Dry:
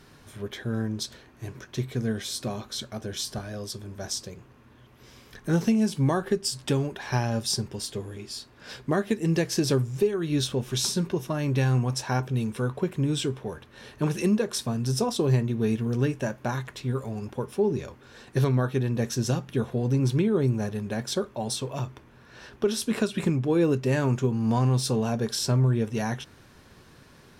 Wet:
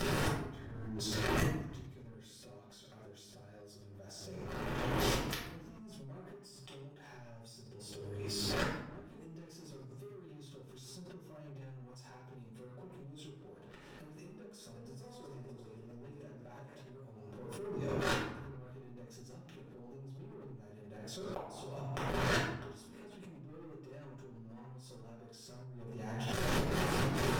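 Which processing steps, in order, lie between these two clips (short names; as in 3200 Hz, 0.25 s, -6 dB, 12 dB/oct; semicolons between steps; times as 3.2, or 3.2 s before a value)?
14.33–16.81 regenerating reverse delay 0.262 s, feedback 45%, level -6 dB; bell 510 Hz +4 dB 2.4 oct; notch 4100 Hz, Q 21; sample leveller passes 3; compressor 8:1, threshold -25 dBFS, peak gain reduction 13.5 dB; flipped gate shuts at -28 dBFS, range -42 dB; reverb RT60 0.90 s, pre-delay 5 ms, DRR -6.5 dB; backwards sustainer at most 23 dB/s; gain +5.5 dB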